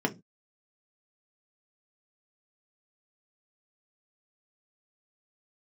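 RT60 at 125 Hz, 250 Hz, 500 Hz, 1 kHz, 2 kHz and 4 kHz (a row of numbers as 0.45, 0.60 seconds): 0.40, 0.35, 0.25, 0.15, 0.15, 0.20 seconds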